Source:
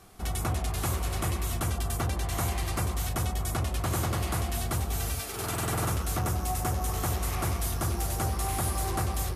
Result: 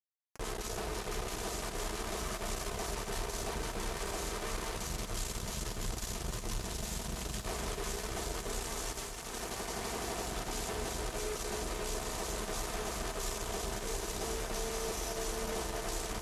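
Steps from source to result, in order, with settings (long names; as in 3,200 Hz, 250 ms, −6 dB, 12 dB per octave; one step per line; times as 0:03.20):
notch filter 2,500 Hz, Q 5.2
gain on a spectral selection 0:02.75–0:04.31, 430–4,300 Hz −10 dB
octave-band graphic EQ 125/250/500/2,000/4,000/8,000 Hz −7/−10/+6/+8/−6/−5 dB
in parallel at +3 dB: brickwall limiter −25.5 dBFS, peak gain reduction 8 dB
on the sum: bit reduction 4 bits
hard clipping −28.5 dBFS, distortion −70 dB
notch comb filter 480 Hz
soft clipping −30.5 dBFS, distortion −18 dB
wrong playback speed 78 rpm record played at 45 rpm
feedback echo at a low word length 269 ms, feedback 80%, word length 11 bits, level −10 dB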